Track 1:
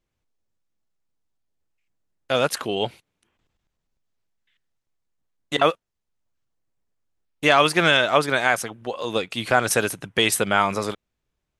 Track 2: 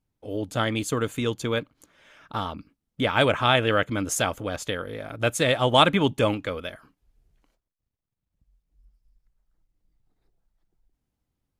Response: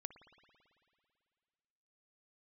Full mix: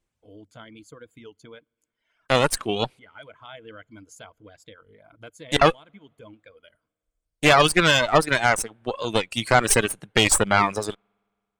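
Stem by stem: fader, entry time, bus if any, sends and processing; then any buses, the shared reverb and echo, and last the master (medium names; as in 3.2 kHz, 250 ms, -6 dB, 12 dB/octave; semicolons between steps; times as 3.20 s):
0.0 dB, 0.00 s, send -20.5 dB, peaking EQ 8.7 kHz +11.5 dB 0.64 oct; Chebyshev shaper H 8 -17 dB, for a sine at 0 dBFS
-16.5 dB, 0.00 s, send -9.5 dB, rippled EQ curve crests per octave 1.8, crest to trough 7 dB; compression 1.5:1, threshold -31 dBFS, peak gain reduction 7.5 dB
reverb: on, RT60 2.4 s, pre-delay 55 ms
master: reverb removal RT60 1.4 s; treble shelf 8.1 kHz -9 dB; warped record 33 1/3 rpm, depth 100 cents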